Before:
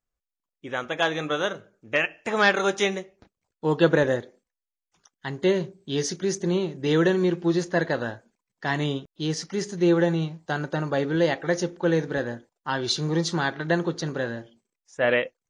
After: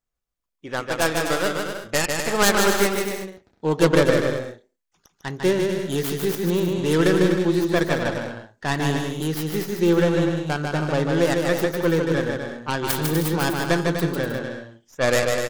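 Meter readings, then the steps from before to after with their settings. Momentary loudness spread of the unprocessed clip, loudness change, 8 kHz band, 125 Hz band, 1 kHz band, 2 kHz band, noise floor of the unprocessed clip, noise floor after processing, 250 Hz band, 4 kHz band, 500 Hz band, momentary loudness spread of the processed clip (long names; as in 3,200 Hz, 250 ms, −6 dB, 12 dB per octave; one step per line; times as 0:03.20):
12 LU, +3.0 dB, +7.5 dB, +4.0 dB, +3.5 dB, +2.0 dB, below −85 dBFS, −78 dBFS, +3.5 dB, +3.0 dB, +3.5 dB, 12 LU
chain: stylus tracing distortion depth 0.5 ms
on a send: bouncing-ball delay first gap 150 ms, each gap 0.65×, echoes 5
on the sum: level +1 dB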